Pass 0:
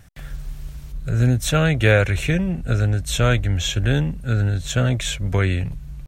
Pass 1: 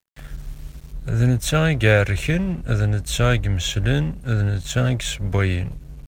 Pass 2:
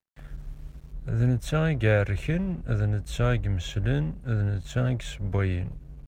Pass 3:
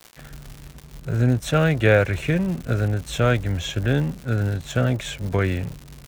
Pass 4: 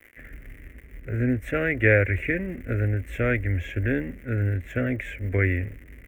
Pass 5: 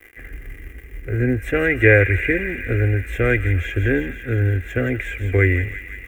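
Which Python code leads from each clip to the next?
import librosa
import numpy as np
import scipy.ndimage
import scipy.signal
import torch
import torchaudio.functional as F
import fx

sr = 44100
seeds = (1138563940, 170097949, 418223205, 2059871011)

y1 = np.sign(x) * np.maximum(np.abs(x) - 10.0 ** (-41.0 / 20.0), 0.0)
y2 = fx.high_shelf(y1, sr, hz=2400.0, db=-10.5)
y2 = y2 * librosa.db_to_amplitude(-5.5)
y3 = fx.highpass(y2, sr, hz=150.0, slope=6)
y3 = fx.dmg_crackle(y3, sr, seeds[0], per_s=200.0, level_db=-38.0)
y3 = y3 * librosa.db_to_amplitude(7.5)
y4 = fx.curve_eq(y3, sr, hz=(100.0, 150.0, 260.0, 370.0, 550.0, 900.0, 1300.0, 2000.0, 4200.0, 13000.0), db=(0, -16, 0, -2, -4, -18, -10, 9, -29, -9))
y5 = y4 + 0.5 * np.pad(y4, (int(2.5 * sr / 1000.0), 0))[:len(y4)]
y5 = fx.echo_wet_highpass(y5, sr, ms=169, feedback_pct=74, hz=2000.0, wet_db=-7.5)
y5 = y5 * librosa.db_to_amplitude(5.0)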